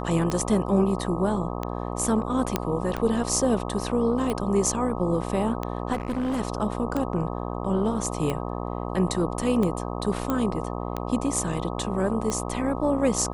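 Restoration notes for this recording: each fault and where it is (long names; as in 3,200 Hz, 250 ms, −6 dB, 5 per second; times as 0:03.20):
mains buzz 60 Hz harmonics 21 −31 dBFS
scratch tick 45 rpm −15 dBFS
0:02.56: click −8 dBFS
0:05.92–0:06.41: clipping −23 dBFS
0:10.30: click −13 dBFS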